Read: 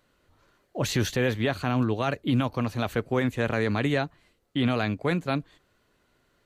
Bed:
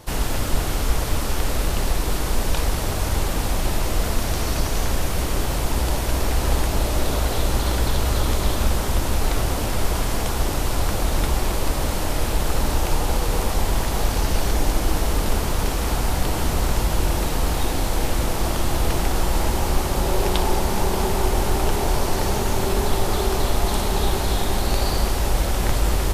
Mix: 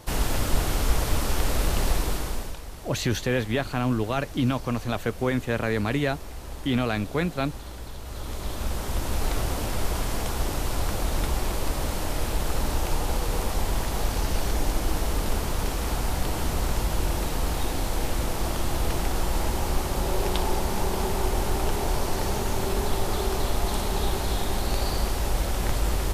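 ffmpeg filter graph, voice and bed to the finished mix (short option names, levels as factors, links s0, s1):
-filter_complex "[0:a]adelay=2100,volume=1[s0];[1:a]volume=3.35,afade=t=out:st=1.93:d=0.65:silence=0.16788,afade=t=in:st=8.03:d=1.22:silence=0.237137[s1];[s0][s1]amix=inputs=2:normalize=0"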